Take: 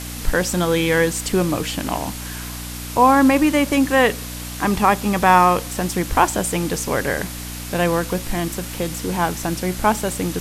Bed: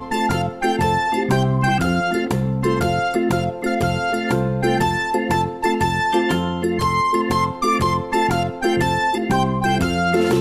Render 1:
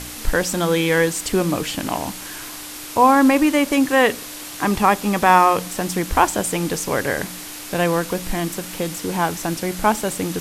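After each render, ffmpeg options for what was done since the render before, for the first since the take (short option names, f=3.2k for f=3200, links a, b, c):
-af "bandreject=f=60:t=h:w=4,bandreject=f=120:t=h:w=4,bandreject=f=180:t=h:w=4,bandreject=f=240:t=h:w=4"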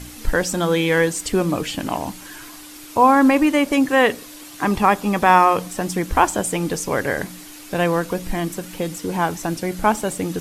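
-af "afftdn=nr=8:nf=-34"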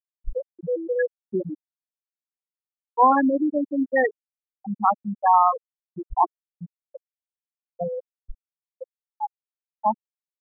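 -af "afftfilt=real='re*gte(hypot(re,im),0.891)':imag='im*gte(hypot(re,im),0.891)':win_size=1024:overlap=0.75,lowshelf=f=420:g=-8.5"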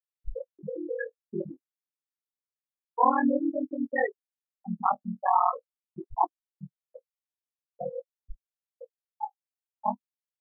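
-af "flanger=delay=9.6:depth=9.6:regen=15:speed=0.48:shape=sinusoidal,aeval=exprs='val(0)*sin(2*PI*20*n/s)':c=same"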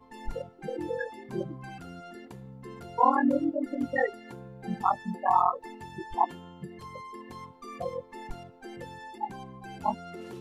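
-filter_complex "[1:a]volume=-25dB[a];[0:a][a]amix=inputs=2:normalize=0"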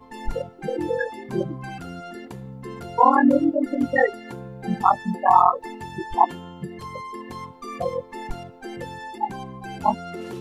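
-af "volume=8dB,alimiter=limit=-3dB:level=0:latency=1"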